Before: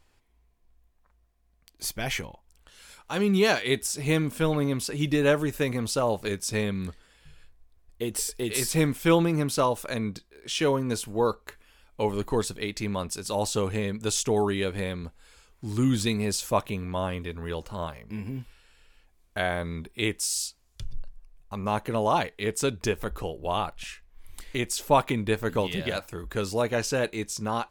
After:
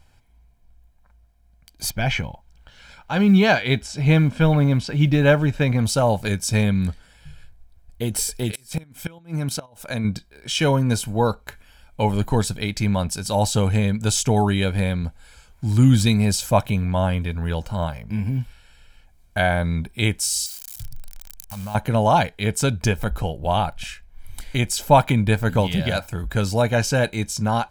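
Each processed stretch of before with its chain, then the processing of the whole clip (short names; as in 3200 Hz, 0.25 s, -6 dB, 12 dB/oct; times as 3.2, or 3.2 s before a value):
1.9–5.79 LPF 4100 Hz + companded quantiser 8-bit
8.51–10.05 low shelf 94 Hz -5.5 dB + level quantiser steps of 11 dB + flipped gate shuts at -20 dBFS, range -27 dB
20.46–21.75 switching spikes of -23.5 dBFS + bell 360 Hz -12.5 dB 0.55 oct + compressor 3:1, threshold -40 dBFS
whole clip: bell 120 Hz +6 dB 2.3 oct; comb 1.3 ms, depth 52%; gain +4.5 dB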